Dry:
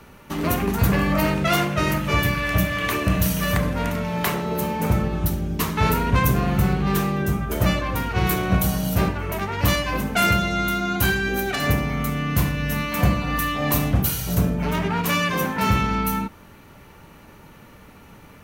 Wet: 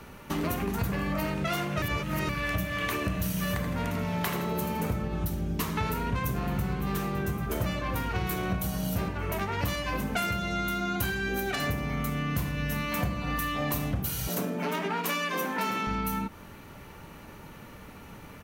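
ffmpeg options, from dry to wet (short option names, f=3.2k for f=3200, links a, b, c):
-filter_complex "[0:a]asettb=1/sr,asplit=3[a][b][c];[a]atrim=end=3.154[d];[b]atrim=start=3.15:end=4.96,asetpts=PTS-STARTPTS,afade=t=in:d=0.004:c=qsin,afade=t=out:st=1.806:d=0.004:c=qsin,aecho=1:1:81|162|243|324:0.355|0.142|0.0568|0.0227,atrim=end_sample=79821[e];[c]atrim=start=4.956[f];[d][e]acrossfade=d=0.004:c1=hsin:c2=qsin[g];[g][f]acrossfade=d=0.004:c1=qsin:c2=hsin,asplit=2[h][i];[i]afade=t=in:st=5.81:d=0.01,afade=t=out:st=6.9:d=0.01,aecho=0:1:560|1120|1680|2240|2800:0.199526|0.0997631|0.0498816|0.0249408|0.0124704[j];[h][j]amix=inputs=2:normalize=0,asettb=1/sr,asplit=3[k][l][m];[k]atrim=end=14.284[n];[l]atrim=start=14.28:end=15.87,asetpts=PTS-STARTPTS,afade=t=in:d=0.004:c=qsin,afade=t=out:st=1.586:d=0.004:c=qsin,highpass=f=220:w=0.5412,highpass=f=220:w=1.3066[o];[m]atrim=start=15.866[p];[n][o]acrossfade=d=0.004:c1=hsin:c2=qsin[q];[q][p]acrossfade=d=0.004:c1=qsin:c2=hsin,asplit=3[r][s][t];[r]atrim=end=1.822[u];[s]atrim=start=1.818:end=2.292,asetpts=PTS-STARTPTS,areverse[v];[t]atrim=start=2.288[w];[u][v]acrossfade=d=0.004:c1=hsin:c2=hsin[x];[x][w]acrossfade=d=0.004:c1=hsin:c2=hsin,acompressor=threshold=-27dB:ratio=6"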